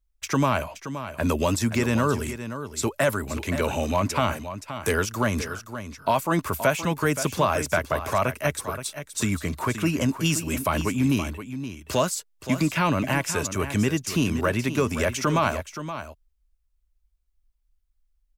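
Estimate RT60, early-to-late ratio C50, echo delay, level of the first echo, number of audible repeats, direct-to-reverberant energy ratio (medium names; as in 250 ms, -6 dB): no reverb, no reverb, 523 ms, -11.0 dB, 1, no reverb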